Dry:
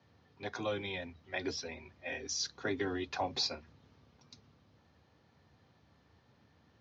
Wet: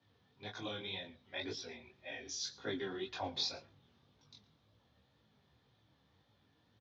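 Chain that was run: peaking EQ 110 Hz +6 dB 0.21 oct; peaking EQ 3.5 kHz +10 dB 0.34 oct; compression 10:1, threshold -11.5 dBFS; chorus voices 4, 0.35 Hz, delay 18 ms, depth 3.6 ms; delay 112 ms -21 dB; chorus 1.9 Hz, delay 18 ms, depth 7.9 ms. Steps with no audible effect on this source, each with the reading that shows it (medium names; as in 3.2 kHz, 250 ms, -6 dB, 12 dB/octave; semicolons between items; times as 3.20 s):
compression, threshold -11.5 dBFS: peak at its input -19.0 dBFS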